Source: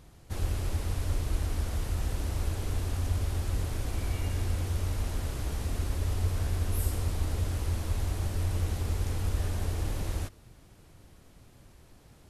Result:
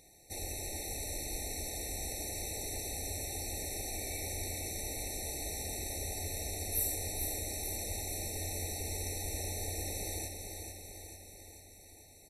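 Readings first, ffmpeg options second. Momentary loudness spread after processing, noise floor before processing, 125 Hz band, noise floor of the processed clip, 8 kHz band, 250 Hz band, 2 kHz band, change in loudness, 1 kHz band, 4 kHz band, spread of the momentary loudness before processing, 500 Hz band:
10 LU, -56 dBFS, -14.0 dB, -56 dBFS, +8.0 dB, -6.5 dB, -1.5 dB, -4.5 dB, -4.0 dB, +2.0 dB, 3 LU, -1.5 dB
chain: -af "bass=f=250:g=-14,treble=f=4000:g=12,aecho=1:1:442|884|1326|1768|2210|2652|3094|3536:0.501|0.296|0.174|0.103|0.0607|0.0358|0.0211|0.0125,afftfilt=real='re*eq(mod(floor(b*sr/1024/900),2),0)':imag='im*eq(mod(floor(b*sr/1024/900),2),0)':win_size=1024:overlap=0.75,volume=0.841"

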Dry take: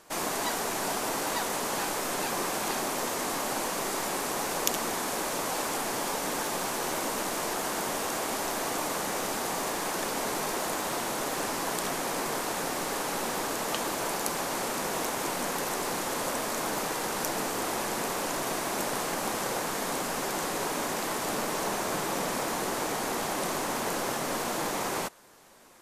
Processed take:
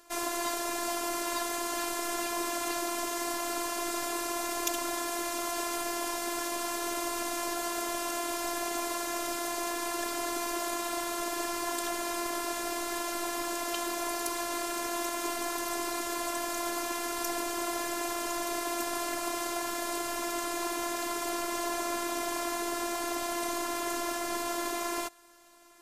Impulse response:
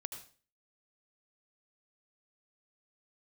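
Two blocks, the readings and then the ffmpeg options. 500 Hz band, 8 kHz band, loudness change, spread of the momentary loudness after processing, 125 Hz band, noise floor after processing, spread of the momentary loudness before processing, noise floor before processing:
-2.5 dB, -2.0 dB, -2.0 dB, 1 LU, -15.5 dB, -35 dBFS, 1 LU, -33 dBFS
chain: -af "acontrast=90,afftfilt=real='hypot(re,im)*cos(PI*b)':imag='0':win_size=512:overlap=0.75,volume=0.501"

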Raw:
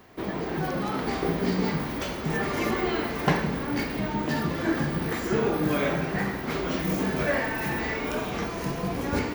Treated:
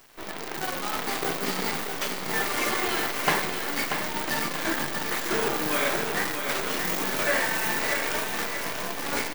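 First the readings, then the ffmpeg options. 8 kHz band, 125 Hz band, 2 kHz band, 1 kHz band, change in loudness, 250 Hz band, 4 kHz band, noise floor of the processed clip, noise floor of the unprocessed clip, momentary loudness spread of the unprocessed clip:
+11.5 dB, -11.0 dB, +4.0 dB, +1.5 dB, +1.0 dB, -7.5 dB, +7.0 dB, -35 dBFS, -33 dBFS, 5 LU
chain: -af "highpass=f=970:p=1,acrusher=bits=6:dc=4:mix=0:aa=0.000001,aecho=1:1:636|1272|1908|2544|3180:0.473|0.208|0.0916|0.0403|0.0177,volume=1.68"

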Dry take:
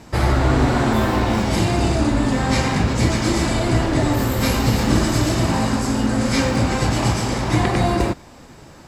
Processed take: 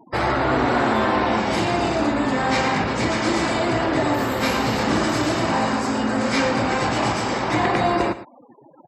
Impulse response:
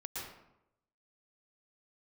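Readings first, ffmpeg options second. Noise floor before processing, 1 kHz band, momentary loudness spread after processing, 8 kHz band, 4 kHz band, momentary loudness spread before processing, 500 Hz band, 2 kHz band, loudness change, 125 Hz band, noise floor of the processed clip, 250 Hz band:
-43 dBFS, +2.5 dB, 3 LU, -5.5 dB, -1.5 dB, 2 LU, +0.5 dB, +2.0 dB, -2.0 dB, -9.5 dB, -49 dBFS, -3.0 dB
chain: -filter_complex "[0:a]asplit=2[s0][s1];[s1]acontrast=88,volume=0.944[s2];[s0][s2]amix=inputs=2:normalize=0,highpass=f=550:p=1,afftfilt=real='re*gte(hypot(re,im),0.0447)':imag='im*gte(hypot(re,im),0.0447)':win_size=1024:overlap=0.75,lowpass=f=2400:p=1,aecho=1:1:113:0.188,volume=0.562"

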